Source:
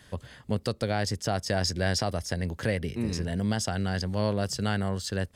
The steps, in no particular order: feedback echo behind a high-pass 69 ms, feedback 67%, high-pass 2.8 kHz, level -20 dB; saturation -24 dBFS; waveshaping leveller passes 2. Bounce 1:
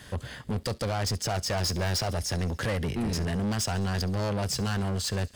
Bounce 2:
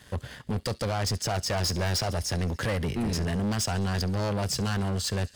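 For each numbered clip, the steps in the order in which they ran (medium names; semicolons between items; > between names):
saturation > waveshaping leveller > feedback echo behind a high-pass; waveshaping leveller > feedback echo behind a high-pass > saturation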